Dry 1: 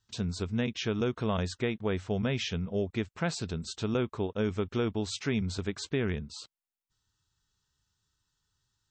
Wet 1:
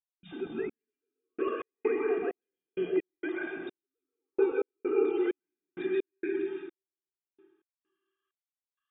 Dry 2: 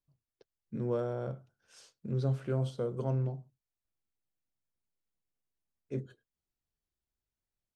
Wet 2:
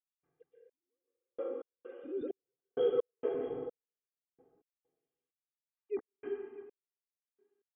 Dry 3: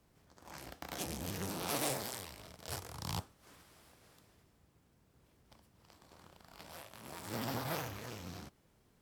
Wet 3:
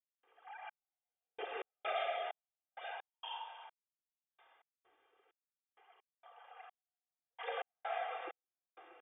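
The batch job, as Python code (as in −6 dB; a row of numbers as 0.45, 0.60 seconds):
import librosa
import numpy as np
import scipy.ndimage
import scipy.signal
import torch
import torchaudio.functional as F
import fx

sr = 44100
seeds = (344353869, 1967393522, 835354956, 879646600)

y = fx.sine_speech(x, sr)
y = y + 0.96 * np.pad(y, (int(2.5 * sr / 1000.0), 0))[:len(y)]
y = y + 10.0 ** (-15.0 / 20.0) * np.pad(y, (int(637 * sr / 1000.0), 0))[:len(y)]
y = fx.rev_plate(y, sr, seeds[0], rt60_s=1.5, hf_ratio=0.75, predelay_ms=110, drr_db=-5.0)
y = fx.step_gate(y, sr, bpm=65, pattern='.xx...x.xx..x', floor_db=-60.0, edge_ms=4.5)
y = y * 10.0 ** (-7.5 / 20.0)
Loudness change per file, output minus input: −0.5, −3.0, −2.0 LU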